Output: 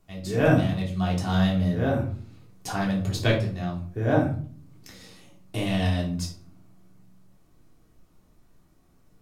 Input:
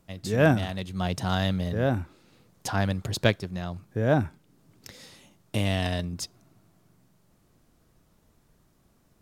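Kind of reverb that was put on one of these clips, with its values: shoebox room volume 390 m³, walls furnished, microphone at 3.4 m; gain -5.5 dB

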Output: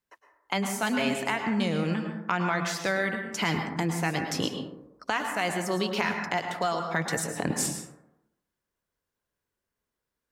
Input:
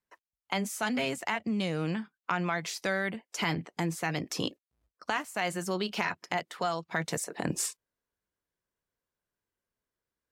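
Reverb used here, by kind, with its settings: plate-style reverb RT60 0.87 s, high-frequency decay 0.35×, pre-delay 95 ms, DRR 4.5 dB; gain +2.5 dB

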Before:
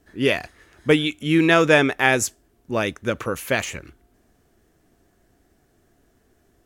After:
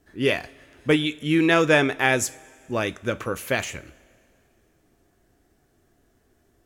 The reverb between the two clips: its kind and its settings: two-slope reverb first 0.3 s, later 2.4 s, from -19 dB, DRR 12.5 dB; gain -2.5 dB

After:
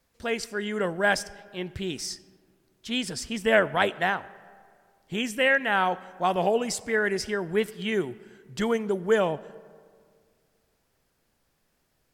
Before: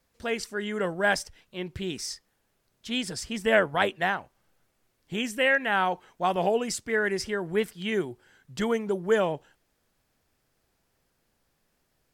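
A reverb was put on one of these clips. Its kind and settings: digital reverb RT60 2.1 s, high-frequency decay 0.45×, pre-delay 30 ms, DRR 19.5 dB; gain +1 dB

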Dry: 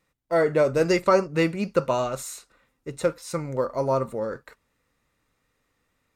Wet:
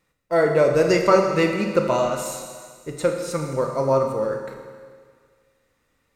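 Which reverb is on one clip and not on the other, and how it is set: Schroeder reverb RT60 1.8 s, combs from 26 ms, DRR 3.5 dB; gain +2 dB

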